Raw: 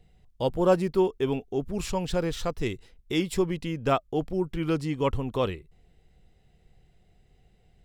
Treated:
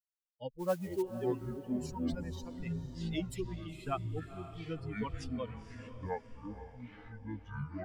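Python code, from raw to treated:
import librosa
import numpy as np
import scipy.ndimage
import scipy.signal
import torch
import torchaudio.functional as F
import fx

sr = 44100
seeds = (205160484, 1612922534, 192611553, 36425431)

p1 = fx.bin_expand(x, sr, power=3.0)
p2 = fx.echo_pitch(p1, sr, ms=234, semitones=-7, count=3, db_per_echo=-3.0)
p3 = fx.mod_noise(p2, sr, seeds[0], snr_db=21, at=(0.58, 1.01), fade=0.02)
p4 = p3 + fx.echo_diffused(p3, sr, ms=492, feedback_pct=46, wet_db=-12, dry=0)
y = F.gain(torch.from_numpy(p4), -8.0).numpy()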